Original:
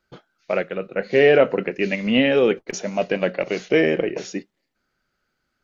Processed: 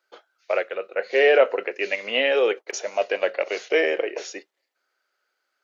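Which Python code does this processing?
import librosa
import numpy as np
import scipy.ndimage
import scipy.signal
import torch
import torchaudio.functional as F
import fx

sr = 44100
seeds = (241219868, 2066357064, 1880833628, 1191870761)

y = scipy.signal.sosfilt(scipy.signal.butter(4, 440.0, 'highpass', fs=sr, output='sos'), x)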